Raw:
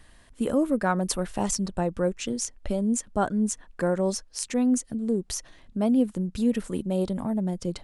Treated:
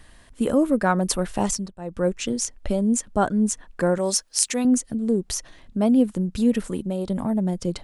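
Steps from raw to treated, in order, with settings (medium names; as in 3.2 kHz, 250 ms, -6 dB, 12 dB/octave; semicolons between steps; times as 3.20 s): 1.45–2.09 s: dip -19.5 dB, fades 0.31 s; 3.98–4.65 s: tilt EQ +2.5 dB/octave; 6.69–7.10 s: compression, threshold -27 dBFS, peak gain reduction 6 dB; trim +4 dB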